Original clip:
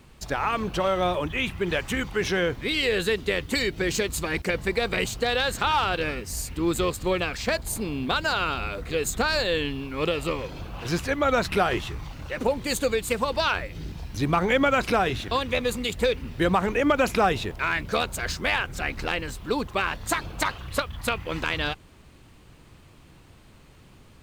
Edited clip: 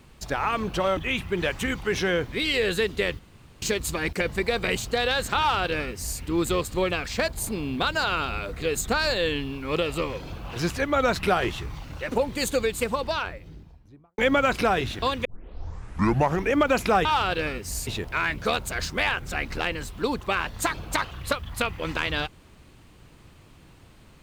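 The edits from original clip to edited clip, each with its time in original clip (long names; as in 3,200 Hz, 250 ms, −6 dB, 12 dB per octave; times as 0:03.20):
0:00.97–0:01.26: remove
0:03.48–0:03.91: fill with room tone
0:05.67–0:06.49: duplicate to 0:17.34
0:12.95–0:14.47: fade out and dull
0:15.54: tape start 1.29 s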